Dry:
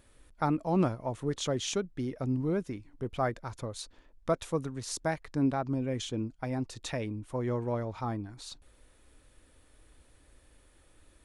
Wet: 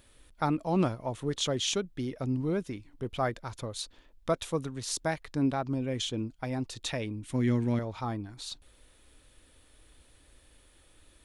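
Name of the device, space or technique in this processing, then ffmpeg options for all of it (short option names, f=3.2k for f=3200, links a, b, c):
presence and air boost: -filter_complex "[0:a]equalizer=f=3.4k:t=o:w=1:g=6,highshelf=f=9.5k:g=6.5,asettb=1/sr,asplit=3[a][b][c];[a]atrim=end=7.234[d];[b]atrim=start=7.23:end=7.79,asetpts=PTS-STARTPTS,afade=t=in:d=0.004:c=qsin,afade=t=out:st=0.556:d=0.004:c=qsin,equalizer=f=125:t=o:w=1:g=4,equalizer=f=250:t=o:w=1:g=10,equalizer=f=500:t=o:w=1:g=-6,equalizer=f=1k:t=o:w=1:g=-6,equalizer=f=2k:t=o:w=1:g=7,equalizer=f=4k:t=o:w=1:g=3,equalizer=f=8k:t=o:w=1:g=7[e];[c]atrim=start=7.786[f];[d][e]acrossfade=d=0.004:c1=hsin:c2=qsin[g];[g][f]acrossfade=d=0.004:c1=qsin:c2=hsin"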